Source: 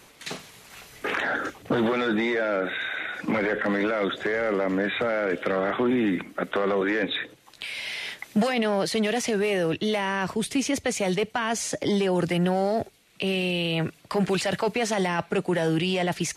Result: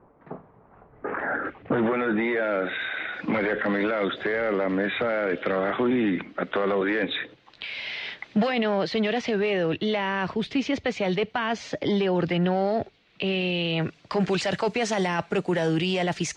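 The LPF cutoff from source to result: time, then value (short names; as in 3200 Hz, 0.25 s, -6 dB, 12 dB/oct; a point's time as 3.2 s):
LPF 24 dB/oct
0.91 s 1100 Hz
1.56 s 2500 Hz
2.08 s 2500 Hz
2.68 s 4300 Hz
13.34 s 4300 Hz
14.6 s 7500 Hz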